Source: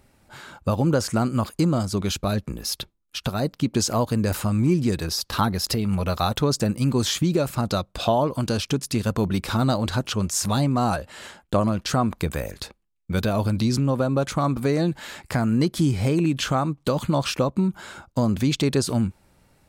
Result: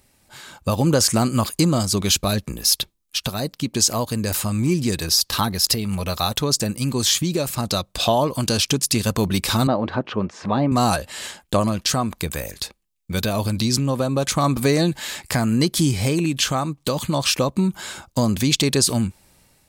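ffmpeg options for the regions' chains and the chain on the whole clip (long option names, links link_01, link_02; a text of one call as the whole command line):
ffmpeg -i in.wav -filter_complex "[0:a]asettb=1/sr,asplit=3[link_01][link_02][link_03];[link_01]atrim=end=9.674[link_04];[link_02]atrim=start=9.67:end=10.72,asetpts=PTS-STARTPTS,afade=type=in:duration=0.004:curve=qsin,afade=type=out:start_time=1.046:duration=0.004:curve=qsin,highpass=340,lowpass=2000,aemphasis=mode=reproduction:type=riaa[link_05];[link_03]atrim=start=10.716[link_06];[link_04][link_05]acrossfade=duration=0.004:curve1=hsin:curve2=qsin[link_07];[link_07][link_06]acrossfade=duration=0.004:curve1=qsin:curve2=hsin,highshelf=frequency=2600:gain=11.5,bandreject=frequency=1400:width=12,dynaudnorm=framelen=430:gausssize=3:maxgain=11.5dB,volume=-4dB" out.wav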